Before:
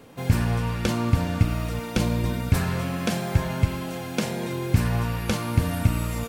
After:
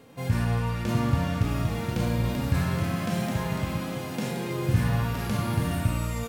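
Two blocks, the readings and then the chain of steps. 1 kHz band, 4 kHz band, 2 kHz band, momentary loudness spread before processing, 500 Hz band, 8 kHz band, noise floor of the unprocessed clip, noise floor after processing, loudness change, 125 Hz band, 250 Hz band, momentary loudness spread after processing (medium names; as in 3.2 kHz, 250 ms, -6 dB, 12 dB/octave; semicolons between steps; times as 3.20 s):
-1.5 dB, -3.5 dB, -2.5 dB, 5 LU, -2.0 dB, -4.0 dB, -34 dBFS, -34 dBFS, -2.0 dB, -2.0 dB, -2.0 dB, 5 LU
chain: ever faster or slower copies 700 ms, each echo +3 st, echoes 3, each echo -6 dB; harmonic-percussive split percussive -17 dB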